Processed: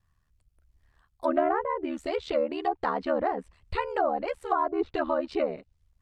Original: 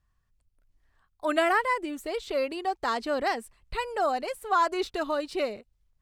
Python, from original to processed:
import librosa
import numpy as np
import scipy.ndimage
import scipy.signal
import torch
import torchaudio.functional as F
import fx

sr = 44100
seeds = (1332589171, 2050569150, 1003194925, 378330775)

y = fx.env_lowpass_down(x, sr, base_hz=780.0, full_db=-23.0)
y = y * np.sin(2.0 * np.pi * 38.0 * np.arange(len(y)) / sr)
y = y * 10.0 ** (5.0 / 20.0)